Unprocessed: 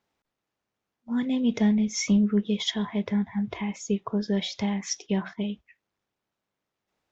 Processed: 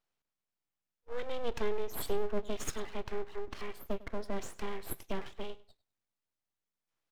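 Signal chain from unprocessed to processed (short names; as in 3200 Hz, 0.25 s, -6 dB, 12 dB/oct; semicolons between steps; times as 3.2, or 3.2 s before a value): 3.83–4.73 LPF 2200 Hz -> 3900 Hz 6 dB/oct; full-wave rectifier; feedback echo 0.101 s, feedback 18%, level -19.5 dB; gain -6.5 dB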